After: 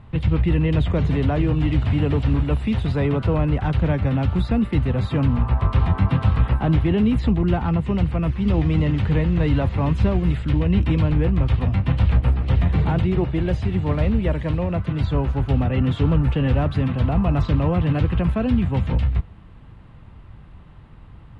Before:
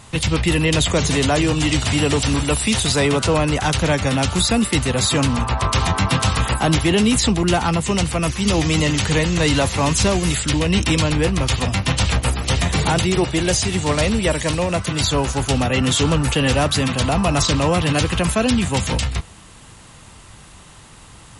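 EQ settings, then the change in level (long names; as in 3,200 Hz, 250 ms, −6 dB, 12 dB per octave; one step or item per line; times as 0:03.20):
high-frequency loss of the air 480 metres
low-shelf EQ 220 Hz +11 dB
−6.5 dB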